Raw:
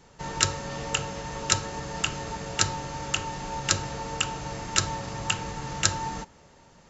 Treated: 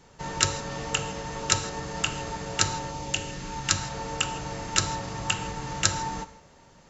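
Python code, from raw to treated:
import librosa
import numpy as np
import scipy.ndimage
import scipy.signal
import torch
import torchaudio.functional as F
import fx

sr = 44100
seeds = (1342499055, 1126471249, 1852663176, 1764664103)

y = fx.peak_eq(x, sr, hz=fx.line((2.9, 1900.0), (3.94, 320.0)), db=-12.5, octaves=0.59, at=(2.9, 3.94), fade=0.02)
y = fx.rev_gated(y, sr, seeds[0], gate_ms=180, shape='flat', drr_db=12.0)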